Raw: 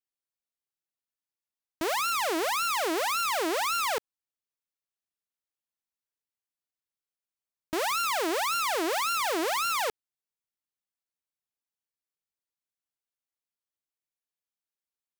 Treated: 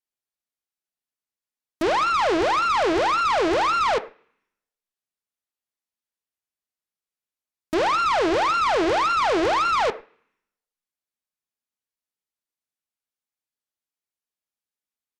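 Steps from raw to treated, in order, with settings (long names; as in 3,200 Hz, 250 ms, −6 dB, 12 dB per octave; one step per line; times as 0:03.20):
far-end echo of a speakerphone 100 ms, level −14 dB
treble cut that deepens with the level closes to 2,000 Hz, closed at −31 dBFS
on a send at −8.5 dB: convolution reverb RT60 0.65 s, pre-delay 3 ms
on the sum: harmonic generator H 5 −11 dB, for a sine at −19 dBFS
expander for the loud parts 1.5 to 1, over −50 dBFS
level +5 dB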